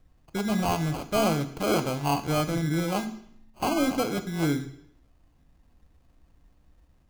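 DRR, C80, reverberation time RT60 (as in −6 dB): 9.0 dB, 15.5 dB, 0.70 s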